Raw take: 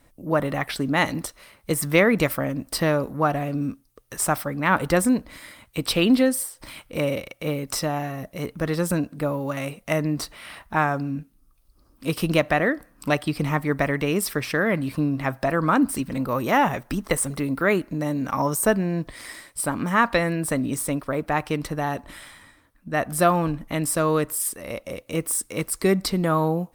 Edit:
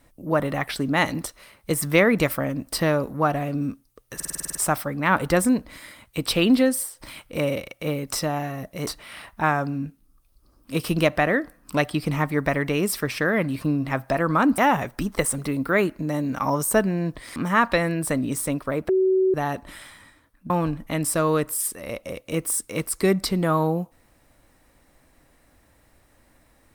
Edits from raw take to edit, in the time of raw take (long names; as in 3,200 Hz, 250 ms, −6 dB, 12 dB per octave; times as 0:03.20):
0:04.15: stutter 0.05 s, 9 plays
0:08.47–0:10.20: remove
0:15.91–0:16.50: remove
0:19.28–0:19.77: remove
0:21.30–0:21.75: beep over 377 Hz −16 dBFS
0:22.91–0:23.31: remove